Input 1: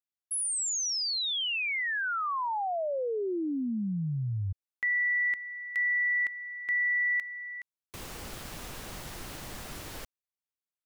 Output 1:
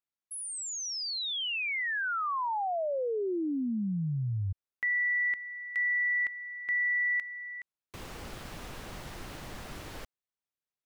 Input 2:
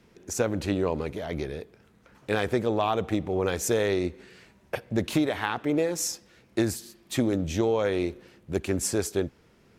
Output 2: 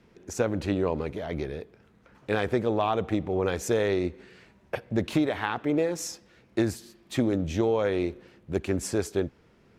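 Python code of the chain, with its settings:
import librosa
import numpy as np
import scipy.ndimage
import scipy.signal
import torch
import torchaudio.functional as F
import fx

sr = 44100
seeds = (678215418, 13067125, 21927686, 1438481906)

y = fx.high_shelf(x, sr, hz=5400.0, db=-9.5)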